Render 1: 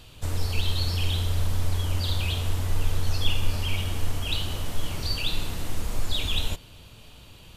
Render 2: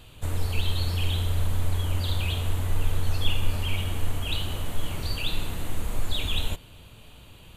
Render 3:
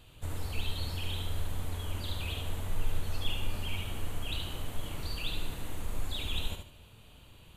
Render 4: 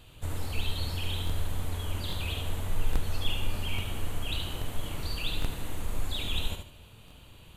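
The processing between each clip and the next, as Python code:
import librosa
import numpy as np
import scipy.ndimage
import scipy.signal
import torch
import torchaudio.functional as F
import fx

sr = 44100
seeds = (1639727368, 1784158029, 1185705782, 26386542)

y1 = fx.peak_eq(x, sr, hz=5300.0, db=-11.5, octaves=0.48)
y2 = fx.echo_feedback(y1, sr, ms=73, feedback_pct=29, wet_db=-6)
y2 = F.gain(torch.from_numpy(y2), -7.5).numpy()
y3 = fx.buffer_crackle(y2, sr, first_s=0.42, period_s=0.83, block=1024, kind='repeat')
y3 = F.gain(torch.from_numpy(y3), 3.0).numpy()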